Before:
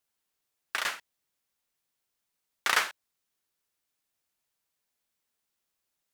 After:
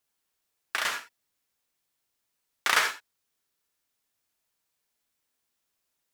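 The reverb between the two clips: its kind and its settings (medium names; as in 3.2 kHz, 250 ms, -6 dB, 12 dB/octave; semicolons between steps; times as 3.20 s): gated-style reverb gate 100 ms rising, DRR 6 dB; trim +1.5 dB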